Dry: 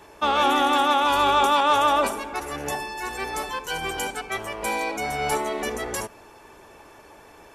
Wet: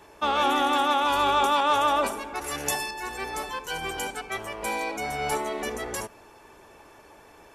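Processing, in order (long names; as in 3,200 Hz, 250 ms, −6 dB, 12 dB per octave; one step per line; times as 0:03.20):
0:02.44–0:02.91: high-shelf EQ 2,400 Hz +11 dB
level −3 dB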